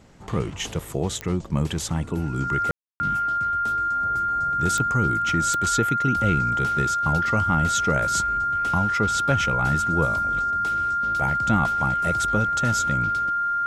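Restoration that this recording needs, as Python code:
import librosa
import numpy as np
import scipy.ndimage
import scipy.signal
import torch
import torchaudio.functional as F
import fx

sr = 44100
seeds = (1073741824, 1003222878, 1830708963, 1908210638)

y = fx.fix_declick_ar(x, sr, threshold=10.0)
y = fx.notch(y, sr, hz=1400.0, q=30.0)
y = fx.fix_ambience(y, sr, seeds[0], print_start_s=0.0, print_end_s=0.5, start_s=2.71, end_s=3.0)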